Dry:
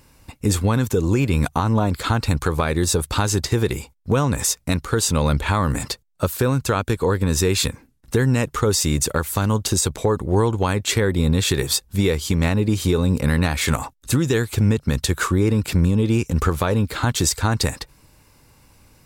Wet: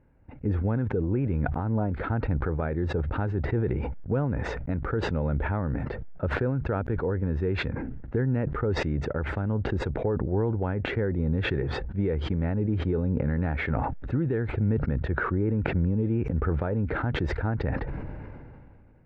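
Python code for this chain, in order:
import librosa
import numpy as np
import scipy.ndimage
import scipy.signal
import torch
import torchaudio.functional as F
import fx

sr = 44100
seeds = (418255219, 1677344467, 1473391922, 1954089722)

y = scipy.signal.sosfilt(scipy.signal.butter(4, 1600.0, 'lowpass', fs=sr, output='sos'), x)
y = fx.peak_eq(y, sr, hz=1100.0, db=-13.0, octaves=0.45)
y = fx.sustainer(y, sr, db_per_s=24.0)
y = F.gain(torch.from_numpy(y), -8.0).numpy()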